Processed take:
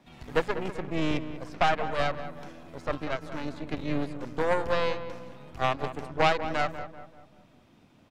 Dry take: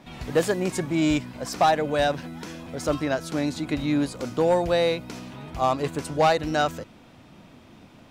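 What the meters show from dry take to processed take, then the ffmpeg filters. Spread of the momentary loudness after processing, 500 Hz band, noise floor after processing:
15 LU, -6.0 dB, -59 dBFS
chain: -filter_complex "[0:a]acrossover=split=230|3500[s0][s1][s2];[s2]acompressor=threshold=0.00251:ratio=10[s3];[s0][s1][s3]amix=inputs=3:normalize=0,aeval=exprs='0.422*(cos(1*acos(clip(val(0)/0.422,-1,1)))-cos(1*PI/2))+0.119*(cos(3*acos(clip(val(0)/0.422,-1,1)))-cos(3*PI/2))+0.0299*(cos(5*acos(clip(val(0)/0.422,-1,1)))-cos(5*PI/2))+0.0422*(cos(6*acos(clip(val(0)/0.422,-1,1)))-cos(6*PI/2))+0.0119*(cos(7*acos(clip(val(0)/0.422,-1,1)))-cos(7*PI/2))':c=same,asplit=2[s4][s5];[s5]adelay=193,lowpass=f=1800:p=1,volume=0.299,asplit=2[s6][s7];[s7]adelay=193,lowpass=f=1800:p=1,volume=0.45,asplit=2[s8][s9];[s9]adelay=193,lowpass=f=1800:p=1,volume=0.45,asplit=2[s10][s11];[s11]adelay=193,lowpass=f=1800:p=1,volume=0.45,asplit=2[s12][s13];[s13]adelay=193,lowpass=f=1800:p=1,volume=0.45[s14];[s4][s6][s8][s10][s12][s14]amix=inputs=6:normalize=0"

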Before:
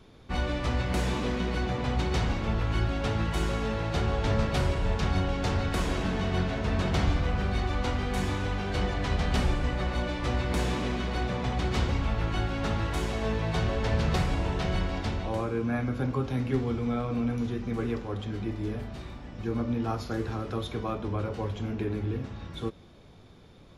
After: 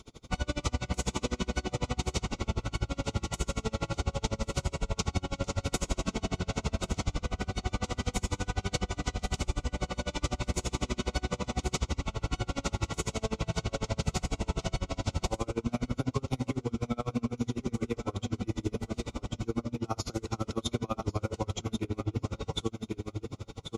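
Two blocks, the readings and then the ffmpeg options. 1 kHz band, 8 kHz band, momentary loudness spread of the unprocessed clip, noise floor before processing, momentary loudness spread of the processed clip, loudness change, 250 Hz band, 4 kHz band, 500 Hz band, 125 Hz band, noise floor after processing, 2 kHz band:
-4.5 dB, +7.0 dB, 6 LU, -52 dBFS, 2 LU, -4.5 dB, -4.0 dB, -1.0 dB, -4.5 dB, -4.5 dB, -57 dBFS, -5.5 dB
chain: -filter_complex "[0:a]asuperstop=centerf=1700:order=8:qfactor=4.8,equalizer=f=7000:w=1.3:g=14,asplit=2[s0][s1];[s1]aecho=0:1:1095|2190|3285:0.355|0.0993|0.0278[s2];[s0][s2]amix=inputs=2:normalize=0,acompressor=threshold=0.0282:ratio=6,aeval=exprs='val(0)*pow(10,-32*(0.5-0.5*cos(2*PI*12*n/s))/20)':c=same,volume=2.51"

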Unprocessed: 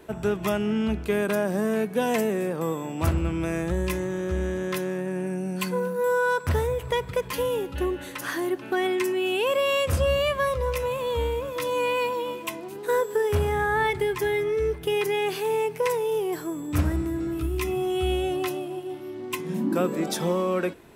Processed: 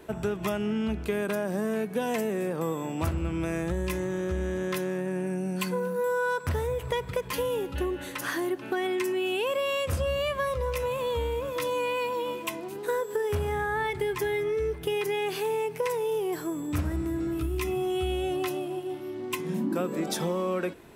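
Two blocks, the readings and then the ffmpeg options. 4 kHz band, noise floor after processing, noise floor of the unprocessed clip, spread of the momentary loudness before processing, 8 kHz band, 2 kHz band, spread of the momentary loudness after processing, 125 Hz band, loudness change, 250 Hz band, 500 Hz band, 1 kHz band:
-3.5 dB, -39 dBFS, -39 dBFS, 6 LU, -2.5 dB, -4.0 dB, 3 LU, -3.5 dB, -3.5 dB, -3.0 dB, -3.5 dB, -3.5 dB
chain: -af "acompressor=threshold=0.0501:ratio=3"

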